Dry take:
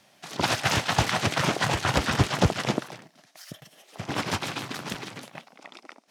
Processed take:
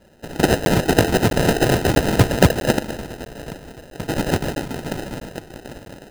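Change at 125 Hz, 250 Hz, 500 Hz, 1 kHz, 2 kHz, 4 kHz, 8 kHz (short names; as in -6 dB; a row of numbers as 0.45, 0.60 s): +8.0, +11.0, +12.0, +3.5, +3.5, +1.5, +4.5 dB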